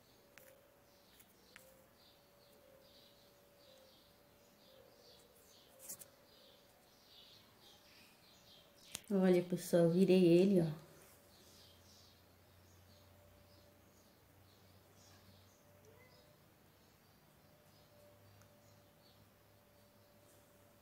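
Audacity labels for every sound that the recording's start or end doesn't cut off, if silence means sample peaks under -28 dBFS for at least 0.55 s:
8.950000	10.630000	sound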